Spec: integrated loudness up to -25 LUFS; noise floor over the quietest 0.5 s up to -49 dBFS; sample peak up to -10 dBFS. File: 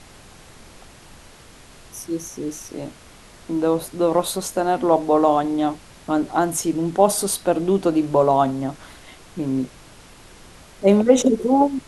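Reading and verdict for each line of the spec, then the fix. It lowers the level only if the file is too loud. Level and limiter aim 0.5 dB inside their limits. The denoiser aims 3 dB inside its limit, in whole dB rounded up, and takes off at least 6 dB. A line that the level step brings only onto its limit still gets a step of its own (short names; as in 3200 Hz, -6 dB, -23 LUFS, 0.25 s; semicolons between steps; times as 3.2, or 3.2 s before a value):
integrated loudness -20.5 LUFS: fail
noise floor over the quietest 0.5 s -46 dBFS: fail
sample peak -2.0 dBFS: fail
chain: gain -5 dB; limiter -10.5 dBFS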